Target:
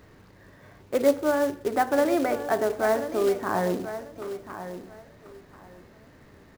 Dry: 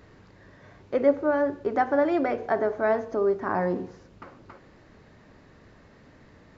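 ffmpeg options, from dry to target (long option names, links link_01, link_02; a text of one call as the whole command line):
ffmpeg -i in.wav -filter_complex "[0:a]acrusher=bits=4:mode=log:mix=0:aa=0.000001,asplit=2[link_01][link_02];[link_02]aecho=0:1:1038|2076|3114:0.266|0.0559|0.0117[link_03];[link_01][link_03]amix=inputs=2:normalize=0" out.wav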